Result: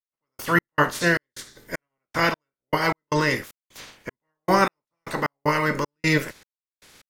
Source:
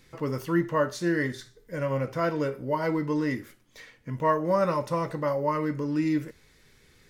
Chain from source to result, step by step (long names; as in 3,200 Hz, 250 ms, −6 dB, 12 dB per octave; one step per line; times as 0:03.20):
ceiling on every frequency bin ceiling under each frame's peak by 21 dB
gate pattern "..x.xx.xx..x" 77 BPM −60 dB
level +6 dB